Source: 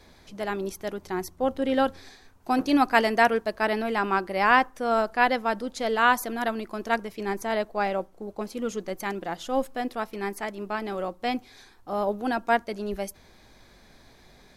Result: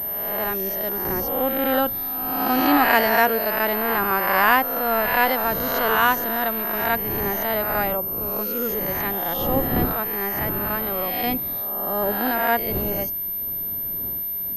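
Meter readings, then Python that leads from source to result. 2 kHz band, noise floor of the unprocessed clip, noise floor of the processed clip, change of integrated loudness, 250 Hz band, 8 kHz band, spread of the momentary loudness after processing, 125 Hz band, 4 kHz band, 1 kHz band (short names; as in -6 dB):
+4.5 dB, -55 dBFS, -28 dBFS, +5.5 dB, +2.5 dB, +0.5 dB, 7 LU, +9.5 dB, +4.0 dB, +3.5 dB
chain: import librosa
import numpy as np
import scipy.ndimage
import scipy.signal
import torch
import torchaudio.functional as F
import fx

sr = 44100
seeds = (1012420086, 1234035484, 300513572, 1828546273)

y = fx.spec_swells(x, sr, rise_s=1.34)
y = fx.dmg_wind(y, sr, seeds[0], corner_hz=310.0, level_db=-36.0)
y = fx.pwm(y, sr, carrier_hz=13000.0)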